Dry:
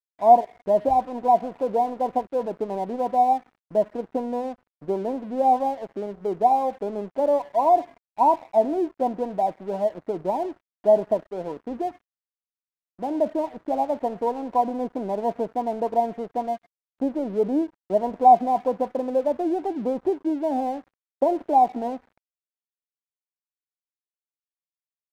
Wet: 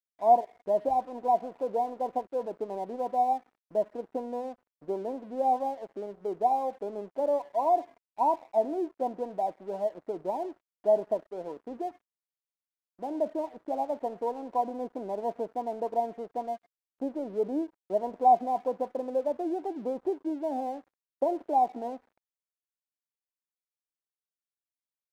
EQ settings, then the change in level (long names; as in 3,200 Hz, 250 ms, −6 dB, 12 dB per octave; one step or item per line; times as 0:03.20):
bass and treble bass −11 dB, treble +4 dB
tilt shelving filter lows +3.5 dB, about 740 Hz
−6.5 dB